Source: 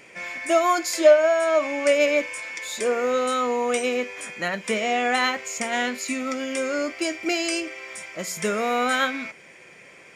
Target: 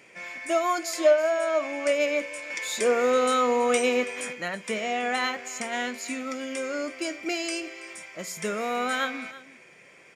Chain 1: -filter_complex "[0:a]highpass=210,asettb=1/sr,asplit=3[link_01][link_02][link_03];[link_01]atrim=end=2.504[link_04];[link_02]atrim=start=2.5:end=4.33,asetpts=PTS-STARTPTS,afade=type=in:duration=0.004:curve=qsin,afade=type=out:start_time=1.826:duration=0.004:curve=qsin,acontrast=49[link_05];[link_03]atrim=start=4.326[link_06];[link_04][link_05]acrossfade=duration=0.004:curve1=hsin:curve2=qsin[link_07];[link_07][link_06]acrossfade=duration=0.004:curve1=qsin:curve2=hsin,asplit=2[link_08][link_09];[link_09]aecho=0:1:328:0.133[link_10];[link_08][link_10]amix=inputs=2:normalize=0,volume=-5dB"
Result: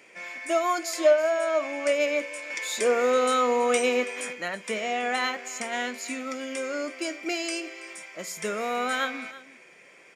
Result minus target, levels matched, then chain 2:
125 Hz band −3.5 dB
-filter_complex "[0:a]highpass=79,asettb=1/sr,asplit=3[link_01][link_02][link_03];[link_01]atrim=end=2.504[link_04];[link_02]atrim=start=2.5:end=4.33,asetpts=PTS-STARTPTS,afade=type=in:duration=0.004:curve=qsin,afade=type=out:start_time=1.826:duration=0.004:curve=qsin,acontrast=49[link_05];[link_03]atrim=start=4.326[link_06];[link_04][link_05]acrossfade=duration=0.004:curve1=hsin:curve2=qsin[link_07];[link_07][link_06]acrossfade=duration=0.004:curve1=qsin:curve2=hsin,asplit=2[link_08][link_09];[link_09]aecho=0:1:328:0.133[link_10];[link_08][link_10]amix=inputs=2:normalize=0,volume=-5dB"

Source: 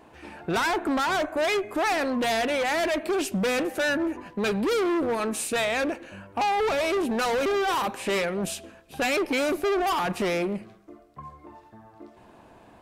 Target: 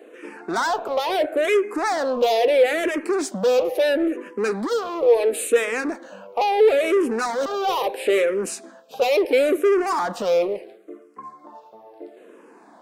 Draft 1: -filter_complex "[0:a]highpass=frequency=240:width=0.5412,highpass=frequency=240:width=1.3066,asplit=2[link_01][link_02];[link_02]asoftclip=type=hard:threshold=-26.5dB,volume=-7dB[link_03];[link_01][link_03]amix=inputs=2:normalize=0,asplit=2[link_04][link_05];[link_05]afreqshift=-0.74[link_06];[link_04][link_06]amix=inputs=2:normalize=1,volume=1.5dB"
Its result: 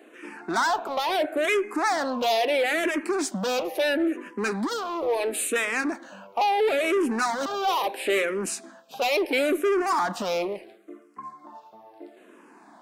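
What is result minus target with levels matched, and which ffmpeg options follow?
500 Hz band −3.0 dB
-filter_complex "[0:a]highpass=frequency=240:width=0.5412,highpass=frequency=240:width=1.3066,equalizer=frequency=480:width=2.6:gain=12.5,asplit=2[link_01][link_02];[link_02]asoftclip=type=hard:threshold=-26.5dB,volume=-7dB[link_03];[link_01][link_03]amix=inputs=2:normalize=0,asplit=2[link_04][link_05];[link_05]afreqshift=-0.74[link_06];[link_04][link_06]amix=inputs=2:normalize=1,volume=1.5dB"

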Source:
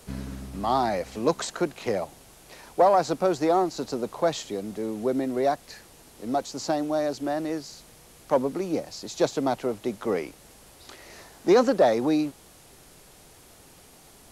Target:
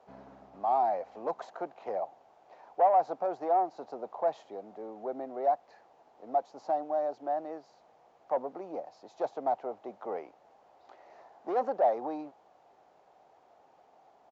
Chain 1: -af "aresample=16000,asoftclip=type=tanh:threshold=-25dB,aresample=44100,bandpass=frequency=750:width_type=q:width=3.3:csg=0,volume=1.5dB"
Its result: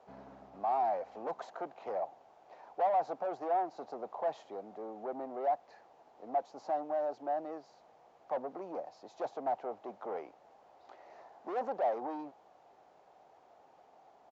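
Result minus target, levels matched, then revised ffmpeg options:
soft clipping: distortion +8 dB
-af "aresample=16000,asoftclip=type=tanh:threshold=-16.5dB,aresample=44100,bandpass=frequency=750:width_type=q:width=3.3:csg=0,volume=1.5dB"

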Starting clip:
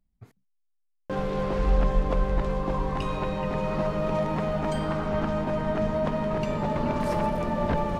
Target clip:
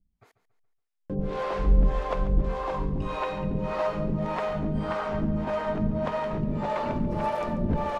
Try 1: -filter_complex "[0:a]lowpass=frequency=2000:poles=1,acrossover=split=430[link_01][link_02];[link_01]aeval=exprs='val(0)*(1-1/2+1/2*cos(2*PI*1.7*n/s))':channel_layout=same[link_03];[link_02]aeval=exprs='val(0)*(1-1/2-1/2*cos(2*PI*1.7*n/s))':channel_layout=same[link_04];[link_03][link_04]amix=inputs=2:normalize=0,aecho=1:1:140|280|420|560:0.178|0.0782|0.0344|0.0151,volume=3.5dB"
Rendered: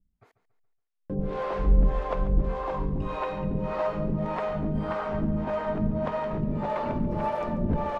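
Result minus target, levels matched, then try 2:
8,000 Hz band −7.0 dB
-filter_complex "[0:a]lowpass=frequency=5900:poles=1,acrossover=split=430[link_01][link_02];[link_01]aeval=exprs='val(0)*(1-1/2+1/2*cos(2*PI*1.7*n/s))':channel_layout=same[link_03];[link_02]aeval=exprs='val(0)*(1-1/2-1/2*cos(2*PI*1.7*n/s))':channel_layout=same[link_04];[link_03][link_04]amix=inputs=2:normalize=0,aecho=1:1:140|280|420|560:0.178|0.0782|0.0344|0.0151,volume=3.5dB"

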